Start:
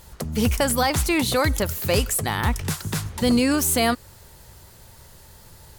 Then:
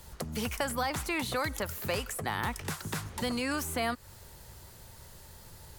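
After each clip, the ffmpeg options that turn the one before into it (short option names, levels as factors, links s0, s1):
-filter_complex "[0:a]acrossover=split=190|730|2200[s0][s1][s2][s3];[s0]acompressor=threshold=0.0126:ratio=4[s4];[s1]acompressor=threshold=0.0178:ratio=4[s5];[s2]acompressor=threshold=0.0398:ratio=4[s6];[s3]acompressor=threshold=0.0158:ratio=4[s7];[s4][s5][s6][s7]amix=inputs=4:normalize=0,volume=0.668"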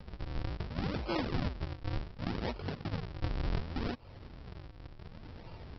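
-af "alimiter=level_in=1.5:limit=0.0631:level=0:latency=1:release=315,volume=0.668,aresample=11025,acrusher=samples=30:mix=1:aa=0.000001:lfo=1:lforange=48:lforate=0.68,aresample=44100,volume=1.58"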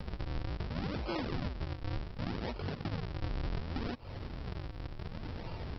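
-filter_complex "[0:a]asplit=2[s0][s1];[s1]alimiter=level_in=2.99:limit=0.0631:level=0:latency=1:release=17,volume=0.335,volume=0.841[s2];[s0][s2]amix=inputs=2:normalize=0,acompressor=threshold=0.01:ratio=2.5,volume=1.41"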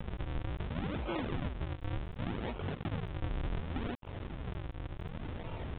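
-af "acrusher=bits=6:mix=0:aa=0.5,aresample=8000,aresample=44100"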